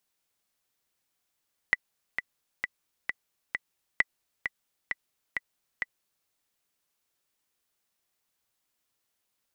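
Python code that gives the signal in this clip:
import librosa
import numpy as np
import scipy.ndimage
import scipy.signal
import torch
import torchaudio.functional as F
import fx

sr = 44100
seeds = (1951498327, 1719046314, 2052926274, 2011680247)

y = fx.click_track(sr, bpm=132, beats=5, bars=2, hz=1980.0, accent_db=8.0, level_db=-8.0)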